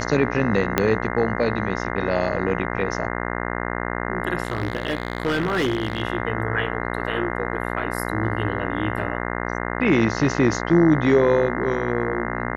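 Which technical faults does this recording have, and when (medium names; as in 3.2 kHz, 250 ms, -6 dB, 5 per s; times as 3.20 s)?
buzz 60 Hz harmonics 35 -27 dBFS
0.78 s: pop -3 dBFS
4.43–6.02 s: clipped -17 dBFS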